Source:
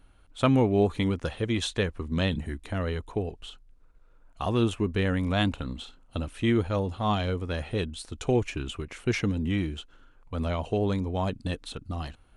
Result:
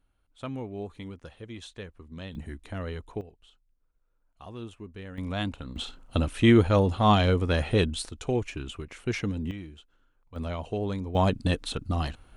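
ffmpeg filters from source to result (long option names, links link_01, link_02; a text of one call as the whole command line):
ffmpeg -i in.wav -af "asetnsamples=nb_out_samples=441:pad=0,asendcmd='2.35 volume volume -5dB;3.21 volume volume -15.5dB;5.18 volume volume -5.5dB;5.76 volume volume 6dB;8.09 volume volume -3dB;9.51 volume volume -12dB;10.36 volume volume -4dB;11.15 volume volume 5.5dB',volume=-14dB" out.wav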